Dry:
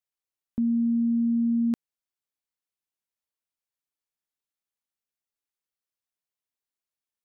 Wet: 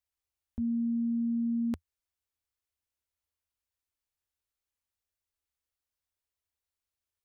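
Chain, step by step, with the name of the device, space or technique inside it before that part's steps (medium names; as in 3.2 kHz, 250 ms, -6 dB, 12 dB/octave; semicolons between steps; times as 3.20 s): car stereo with a boomy subwoofer (resonant low shelf 110 Hz +9.5 dB, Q 3; peak limiter -26.5 dBFS, peak gain reduction 8 dB)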